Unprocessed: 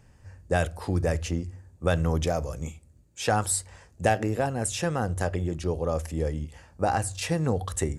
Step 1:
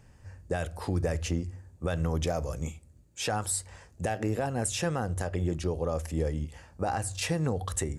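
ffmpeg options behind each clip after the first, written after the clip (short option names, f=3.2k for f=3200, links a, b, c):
-af "alimiter=limit=-18dB:level=0:latency=1:release=191"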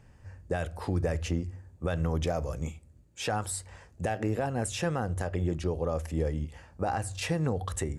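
-af "bass=f=250:g=0,treble=f=4k:g=-5"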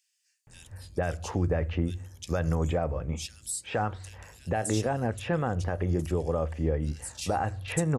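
-filter_complex "[0:a]acrossover=split=3200[a][b];[a]adelay=470[c];[c][b]amix=inputs=2:normalize=0,volume=2dB"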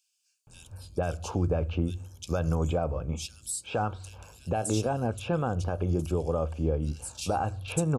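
-af "asuperstop=centerf=1900:order=4:qfactor=2.5"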